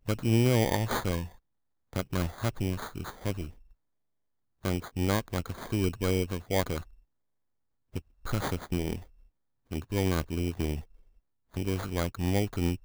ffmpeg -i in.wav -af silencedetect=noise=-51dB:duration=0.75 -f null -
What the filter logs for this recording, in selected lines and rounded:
silence_start: 3.72
silence_end: 4.64 | silence_duration: 0.91
silence_start: 6.99
silence_end: 7.94 | silence_duration: 0.94